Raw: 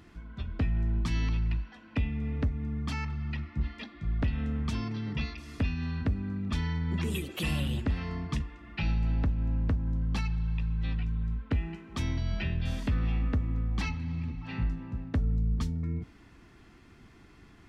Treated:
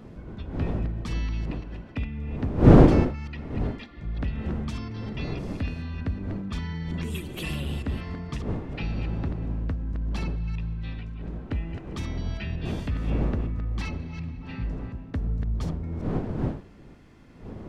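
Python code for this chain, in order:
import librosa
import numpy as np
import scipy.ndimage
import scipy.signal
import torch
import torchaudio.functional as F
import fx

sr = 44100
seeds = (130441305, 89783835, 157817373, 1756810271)

y = fx.reverse_delay(x, sr, ms=182, wet_db=-7.5)
y = fx.dmg_wind(y, sr, seeds[0], corner_hz=270.0, level_db=-27.0)
y = F.gain(torch.from_numpy(y), -1.5).numpy()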